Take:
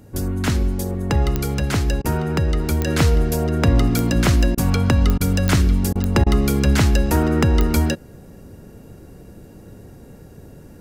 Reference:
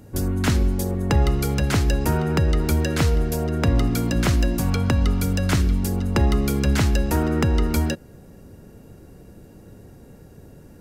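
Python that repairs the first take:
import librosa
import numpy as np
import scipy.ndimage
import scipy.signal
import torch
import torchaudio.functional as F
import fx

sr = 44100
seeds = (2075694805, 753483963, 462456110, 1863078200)

y = fx.fix_declick_ar(x, sr, threshold=10.0)
y = fx.fix_interpolate(y, sr, at_s=(2.02, 4.55, 5.18, 5.93, 6.24), length_ms=23.0)
y = fx.gain(y, sr, db=fx.steps((0.0, 0.0), (2.87, -3.5)))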